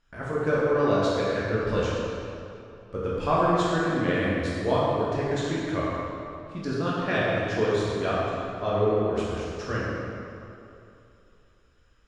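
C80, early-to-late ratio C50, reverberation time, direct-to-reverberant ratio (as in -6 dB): -1.5 dB, -3.0 dB, 2.8 s, -8.0 dB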